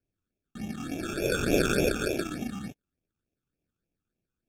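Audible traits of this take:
aliases and images of a low sample rate 1,000 Hz, jitter 0%
phaser sweep stages 8, 3.4 Hz, lowest notch 560–1,400 Hz
AAC

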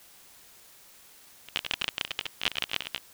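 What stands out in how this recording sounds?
tremolo triangle 6.6 Hz, depth 100%
a quantiser's noise floor 10 bits, dither triangular

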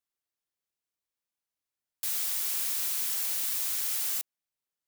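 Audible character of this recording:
background noise floor −91 dBFS
spectral slope +3.0 dB per octave

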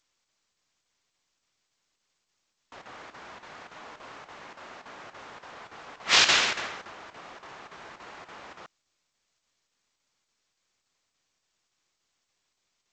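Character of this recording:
chopped level 3.5 Hz, depth 65%, duty 85%
G.722

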